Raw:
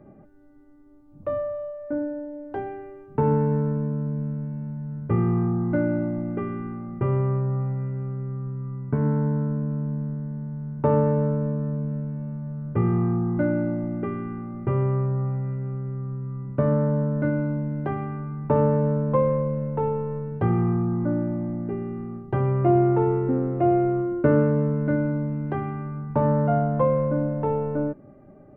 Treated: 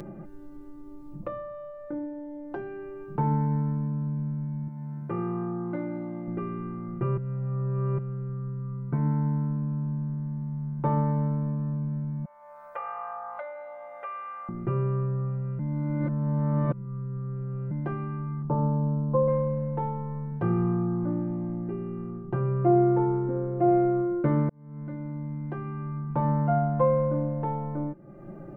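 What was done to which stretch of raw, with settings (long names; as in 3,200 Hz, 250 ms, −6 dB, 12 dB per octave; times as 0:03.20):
0:04.68–0:06.28: high-pass filter 360 Hz 6 dB per octave
0:07.17–0:07.98: reverse
0:12.25–0:14.49: elliptic high-pass filter 560 Hz
0:15.59–0:17.71: reverse
0:18.42–0:19.28: moving average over 22 samples
0:22.10–0:23.68: high-shelf EQ 2,300 Hz −8 dB
0:24.49–0:26.27: fade in
whole clip: upward compression, threshold −25 dBFS; comb filter 5.8 ms, depth 78%; level −6 dB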